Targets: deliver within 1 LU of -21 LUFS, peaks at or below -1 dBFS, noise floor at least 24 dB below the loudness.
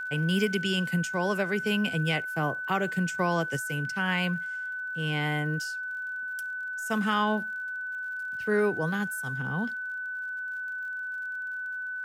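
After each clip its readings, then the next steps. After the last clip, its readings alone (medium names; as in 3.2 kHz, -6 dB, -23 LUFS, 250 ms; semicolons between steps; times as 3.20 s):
tick rate 47 per s; steady tone 1.5 kHz; tone level -32 dBFS; loudness -29.5 LUFS; peak level -13.5 dBFS; loudness target -21.0 LUFS
-> de-click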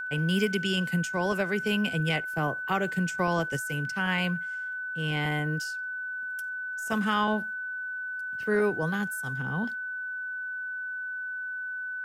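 tick rate 0.33 per s; steady tone 1.5 kHz; tone level -32 dBFS
-> band-stop 1.5 kHz, Q 30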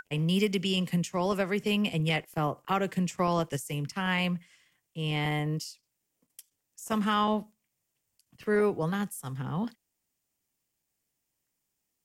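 steady tone not found; loudness -30.0 LUFS; peak level -15.0 dBFS; loudness target -21.0 LUFS
-> trim +9 dB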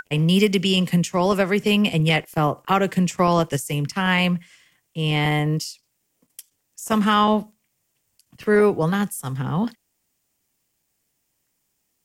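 loudness -21.0 LUFS; peak level -6.0 dBFS; noise floor -73 dBFS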